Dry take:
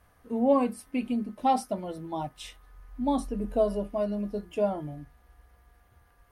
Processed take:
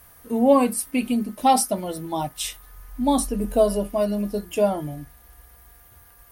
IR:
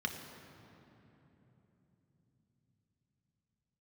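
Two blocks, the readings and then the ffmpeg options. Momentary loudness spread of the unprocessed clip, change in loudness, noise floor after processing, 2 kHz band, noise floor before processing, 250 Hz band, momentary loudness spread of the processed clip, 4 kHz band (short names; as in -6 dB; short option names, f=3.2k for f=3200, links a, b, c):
14 LU, +6.5 dB, -52 dBFS, +9.5 dB, -62 dBFS, +6.0 dB, 12 LU, +12.5 dB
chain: -af "aemphasis=mode=production:type=75fm,volume=7dB"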